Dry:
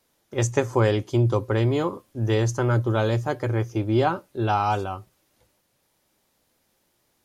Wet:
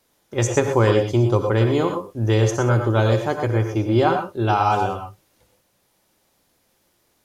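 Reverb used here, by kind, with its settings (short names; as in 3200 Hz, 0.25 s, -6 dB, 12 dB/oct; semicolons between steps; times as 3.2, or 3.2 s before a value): non-linear reverb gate 0.14 s rising, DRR 5 dB; gain +3 dB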